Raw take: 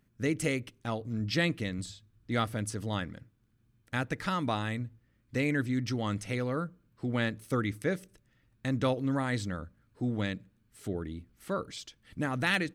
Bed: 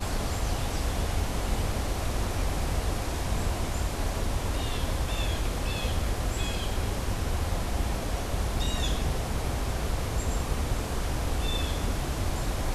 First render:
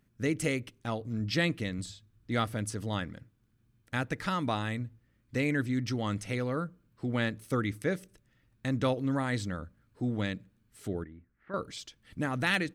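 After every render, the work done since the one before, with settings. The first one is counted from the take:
0:11.04–0:11.54: transistor ladder low-pass 2,000 Hz, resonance 55%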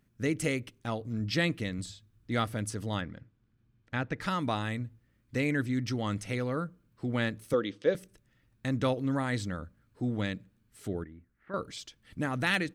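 0:03.01–0:04.21: high-frequency loss of the air 130 metres
0:07.53–0:07.95: loudspeaker in its box 250–5,500 Hz, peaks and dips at 510 Hz +10 dB, 730 Hz −3 dB, 1,400 Hz −4 dB, 2,100 Hz −7 dB, 3,200 Hz +8 dB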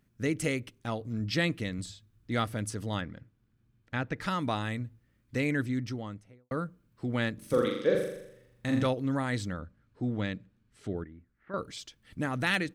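0:05.57–0:06.51: fade out and dull
0:07.34–0:08.86: flutter between parallel walls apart 7.1 metres, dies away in 0.79 s
0:09.53–0:11.58: high-frequency loss of the air 76 metres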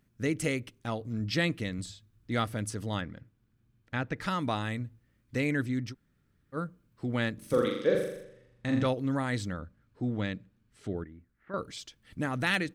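0:05.92–0:06.55: fill with room tone, crossfade 0.06 s
0:08.23–0:08.87: high-frequency loss of the air 53 metres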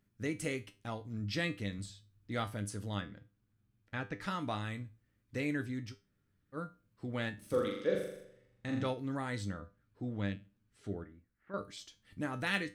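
tuned comb filter 100 Hz, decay 0.27 s, harmonics all, mix 70%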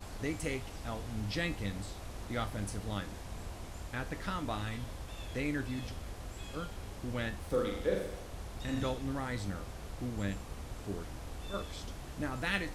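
mix in bed −15 dB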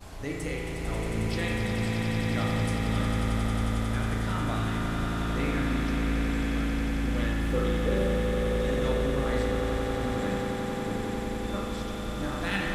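on a send: echo that builds up and dies away 90 ms, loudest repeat 8, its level −8 dB
on the sum: spring reverb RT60 1.4 s, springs 36 ms, chirp 20 ms, DRR −1 dB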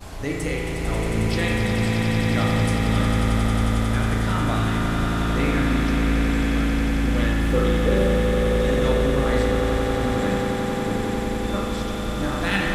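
level +7 dB

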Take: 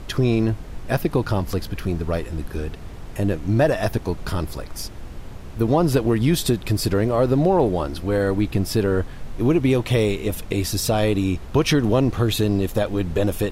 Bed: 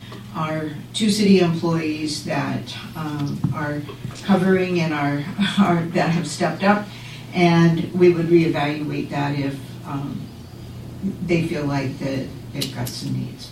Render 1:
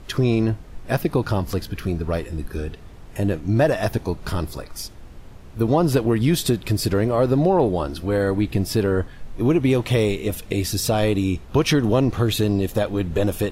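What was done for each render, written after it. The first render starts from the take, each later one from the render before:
noise reduction from a noise print 6 dB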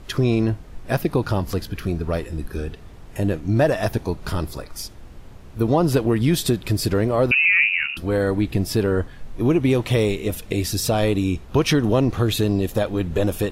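0:07.31–0:07.97: voice inversion scrambler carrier 2,800 Hz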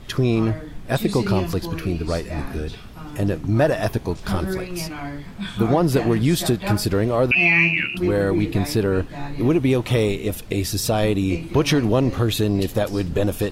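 mix in bed −10 dB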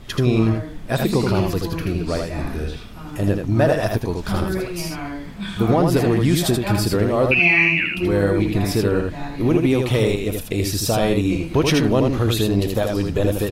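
single-tap delay 80 ms −4 dB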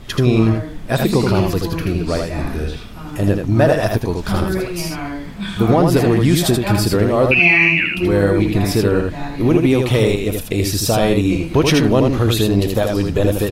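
level +3.5 dB
brickwall limiter −1 dBFS, peak gain reduction 2 dB

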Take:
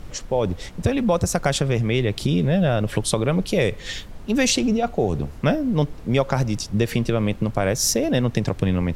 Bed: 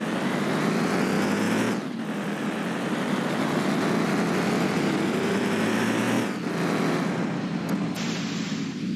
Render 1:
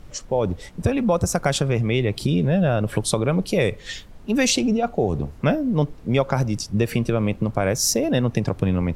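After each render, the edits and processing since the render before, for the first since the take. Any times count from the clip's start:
noise reduction from a noise print 6 dB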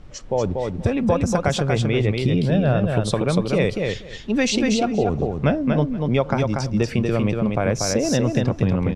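high-frequency loss of the air 77 metres
on a send: repeating echo 238 ms, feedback 15%, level −4 dB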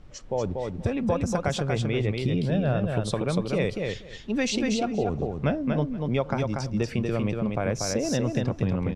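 level −6 dB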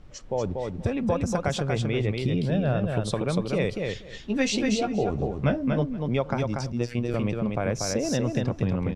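0:04.05–0:05.82: double-tracking delay 15 ms −6 dB
0:06.72–0:07.14: phases set to zero 120 Hz

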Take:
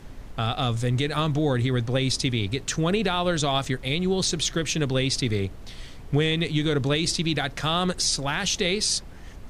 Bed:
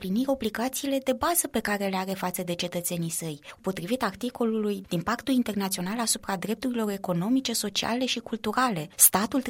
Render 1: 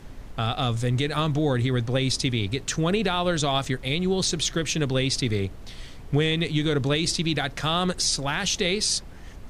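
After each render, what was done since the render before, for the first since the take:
no processing that can be heard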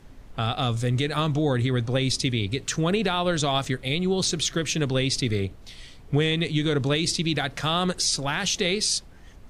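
noise reduction from a noise print 6 dB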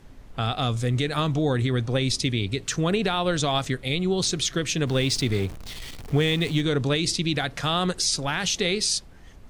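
0:04.87–0:06.61: converter with a step at zero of −35.5 dBFS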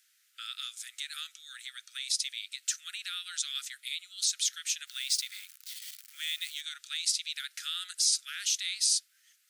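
Butterworth high-pass 1,300 Hz 96 dB per octave
first difference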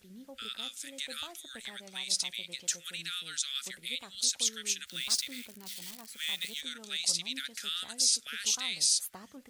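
mix in bed −24 dB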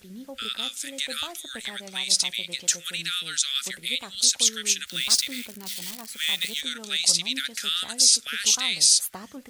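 level +9 dB

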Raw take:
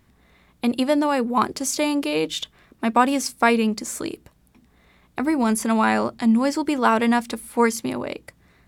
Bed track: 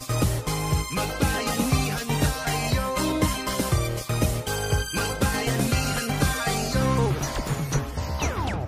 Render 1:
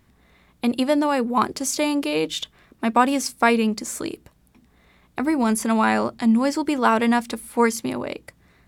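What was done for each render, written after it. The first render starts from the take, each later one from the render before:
no processing that can be heard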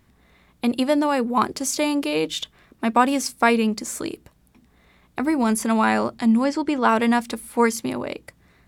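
0:06.44–0:06.89: high-frequency loss of the air 63 metres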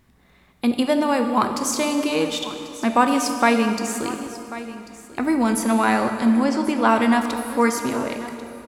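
single-tap delay 1,091 ms −16 dB
dense smooth reverb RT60 2.8 s, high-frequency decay 0.75×, DRR 5.5 dB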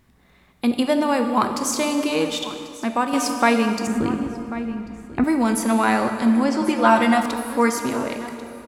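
0:02.53–0:03.13: fade out, to −7 dB
0:03.87–0:05.24: bass and treble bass +14 dB, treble −13 dB
0:06.61–0:07.26: comb filter 5.7 ms, depth 75%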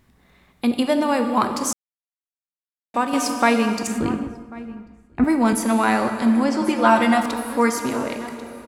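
0:01.73–0:02.94: silence
0:03.83–0:05.53: multiband upward and downward expander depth 100%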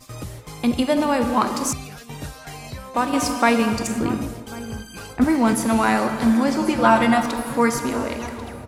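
mix in bed track −10.5 dB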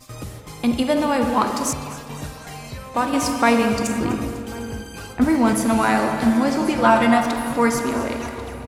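repeating echo 251 ms, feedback 55%, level −16.5 dB
spring reverb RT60 2.1 s, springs 47 ms, chirp 35 ms, DRR 8 dB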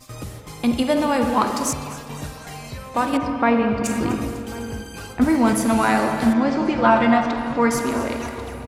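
0:03.17–0:03.84: high-frequency loss of the air 410 metres
0:06.33–0:07.71: high-frequency loss of the air 140 metres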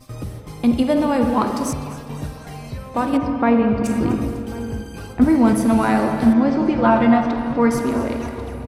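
tilt shelving filter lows +4.5 dB, about 710 Hz
notch filter 7,000 Hz, Q 8.1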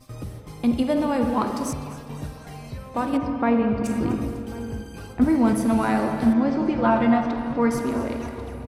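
level −4.5 dB

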